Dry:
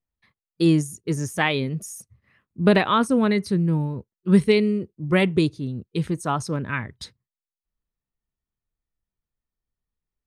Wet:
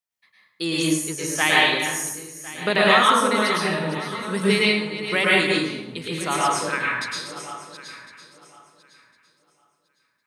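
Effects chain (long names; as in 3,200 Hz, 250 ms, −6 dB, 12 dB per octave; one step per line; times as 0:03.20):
feedback delay that plays each chunk backwards 528 ms, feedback 44%, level −10.5 dB
high-pass filter 1,400 Hz 6 dB per octave
dense smooth reverb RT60 0.81 s, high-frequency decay 0.75×, pre-delay 95 ms, DRR −5.5 dB
level +3.5 dB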